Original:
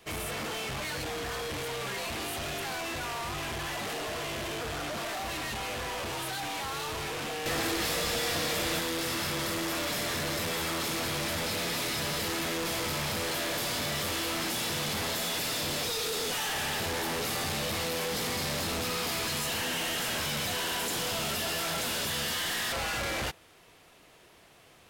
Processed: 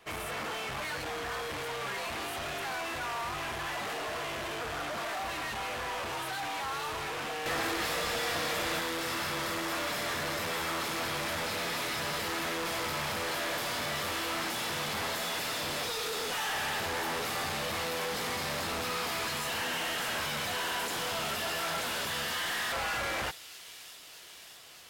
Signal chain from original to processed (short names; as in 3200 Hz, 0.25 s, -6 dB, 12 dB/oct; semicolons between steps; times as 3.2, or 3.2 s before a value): bell 1200 Hz +8 dB 2.5 oct; thin delay 0.617 s, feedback 76%, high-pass 3700 Hz, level -11 dB; gain -6 dB